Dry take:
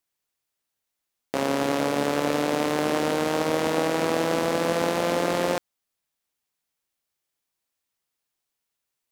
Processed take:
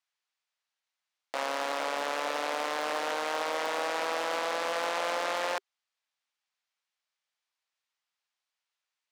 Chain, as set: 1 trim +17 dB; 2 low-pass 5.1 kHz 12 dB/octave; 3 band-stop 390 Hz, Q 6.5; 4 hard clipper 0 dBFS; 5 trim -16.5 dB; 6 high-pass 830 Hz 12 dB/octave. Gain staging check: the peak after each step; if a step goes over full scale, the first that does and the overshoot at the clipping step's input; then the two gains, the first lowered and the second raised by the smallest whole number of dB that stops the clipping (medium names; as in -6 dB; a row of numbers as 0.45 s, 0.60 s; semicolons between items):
+8.0 dBFS, +8.0 dBFS, +8.0 dBFS, 0.0 dBFS, -16.5 dBFS, -16.0 dBFS; step 1, 8.0 dB; step 1 +9 dB, step 5 -8.5 dB